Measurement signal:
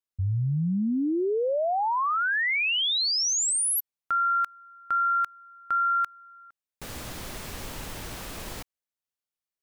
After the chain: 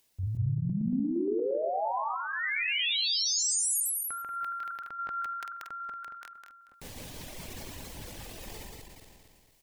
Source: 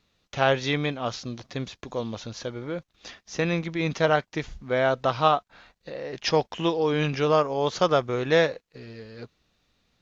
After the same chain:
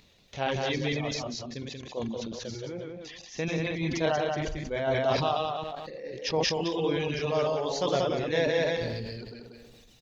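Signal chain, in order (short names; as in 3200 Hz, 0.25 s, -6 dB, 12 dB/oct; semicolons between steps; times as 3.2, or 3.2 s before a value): regenerating reverse delay 0.116 s, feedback 42%, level -1.5 dB; bell 1300 Hz -9.5 dB 0.55 oct; reverb removal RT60 1.8 s; upward compressor, threshold -44 dBFS; echo 0.185 s -5 dB; sustainer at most 25 dB/s; gain -6.5 dB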